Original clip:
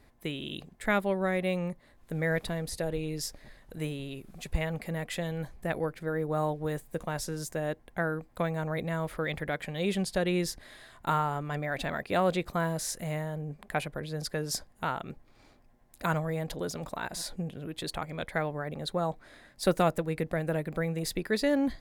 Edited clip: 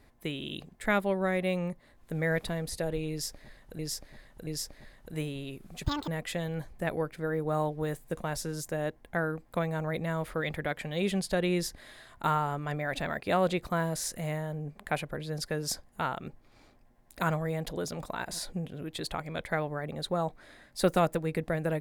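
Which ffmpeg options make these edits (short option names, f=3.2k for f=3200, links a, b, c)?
-filter_complex "[0:a]asplit=5[a][b][c][d][e];[a]atrim=end=3.792[f];[b]atrim=start=3.108:end=3.792[g];[c]atrim=start=3.108:end=4.484[h];[d]atrim=start=4.48:end=4.91,asetpts=PTS-STARTPTS,asetrate=79821,aresample=44100[i];[e]atrim=start=4.906[j];[f][g]acrossfade=d=0.004:c1=hsin:c2=hsin[k];[k][h]acrossfade=d=0.004:c1=hsin:c2=hsin[l];[l][i]acrossfade=d=0.004:c1=hsin:c2=hsin[m];[m][j]acrossfade=d=0.004:c1=hsin:c2=hsin"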